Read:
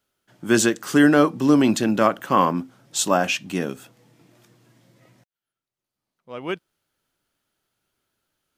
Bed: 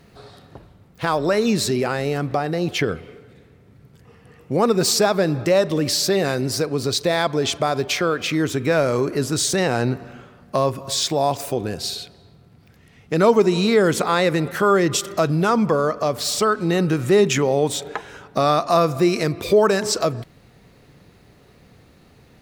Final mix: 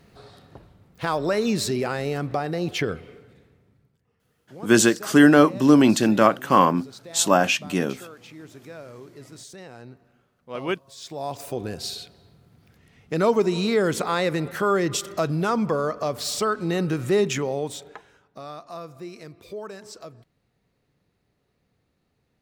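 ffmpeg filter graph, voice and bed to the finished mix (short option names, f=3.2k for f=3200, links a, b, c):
-filter_complex "[0:a]adelay=4200,volume=1.5dB[a];[1:a]volume=13.5dB,afade=t=out:st=3.2:d=0.79:silence=0.11885,afade=t=in:st=10.96:d=0.7:silence=0.133352,afade=t=out:st=17.15:d=1.06:silence=0.16788[b];[a][b]amix=inputs=2:normalize=0"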